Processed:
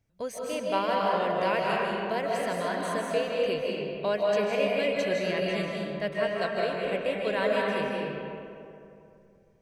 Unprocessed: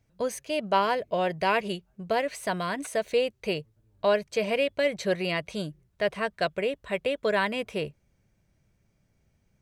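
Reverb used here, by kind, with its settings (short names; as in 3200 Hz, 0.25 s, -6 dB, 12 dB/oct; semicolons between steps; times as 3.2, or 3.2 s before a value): digital reverb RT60 2.7 s, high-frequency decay 0.5×, pre-delay 0.115 s, DRR -3.5 dB; gain -5.5 dB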